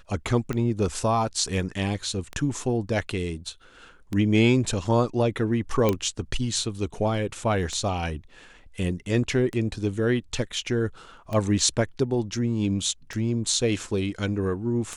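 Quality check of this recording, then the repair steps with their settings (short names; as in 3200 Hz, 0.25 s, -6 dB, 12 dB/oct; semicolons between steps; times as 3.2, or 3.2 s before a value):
tick 33 1/3 rpm -17 dBFS
5.89 pop -9 dBFS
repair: de-click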